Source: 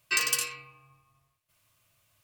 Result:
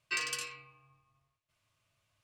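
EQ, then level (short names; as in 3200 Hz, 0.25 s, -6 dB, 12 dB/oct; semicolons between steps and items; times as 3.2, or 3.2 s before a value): air absorption 59 m; -5.5 dB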